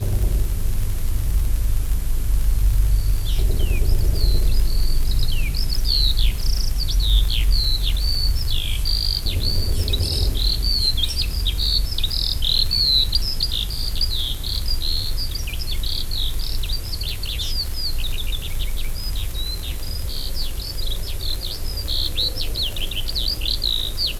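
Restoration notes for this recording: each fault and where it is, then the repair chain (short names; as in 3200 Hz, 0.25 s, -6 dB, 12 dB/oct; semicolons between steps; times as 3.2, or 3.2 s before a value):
crackle 52/s -23 dBFS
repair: de-click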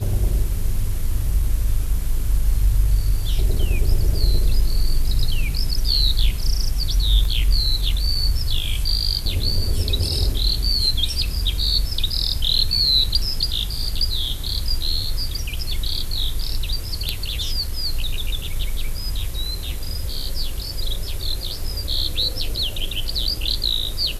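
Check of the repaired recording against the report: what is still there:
none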